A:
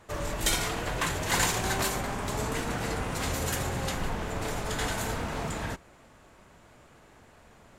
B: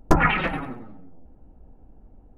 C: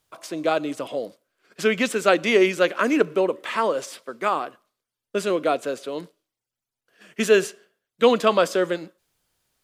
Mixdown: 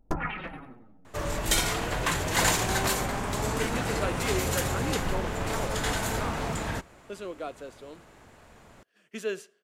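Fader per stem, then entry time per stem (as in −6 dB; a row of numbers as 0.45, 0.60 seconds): +2.0, −13.0, −15.0 decibels; 1.05, 0.00, 1.95 seconds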